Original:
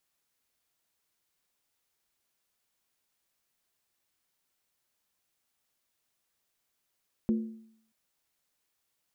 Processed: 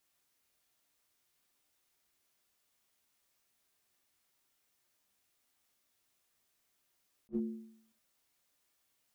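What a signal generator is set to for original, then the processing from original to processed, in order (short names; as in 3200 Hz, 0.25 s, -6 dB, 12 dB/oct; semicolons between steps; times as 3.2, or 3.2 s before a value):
skin hit, lowest mode 222 Hz, decay 0.67 s, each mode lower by 10 dB, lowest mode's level -21.5 dB
compressor 2.5:1, threshold -32 dBFS; non-linear reverb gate 0.12 s falling, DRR 2.5 dB; attack slew limiter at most 590 dB/s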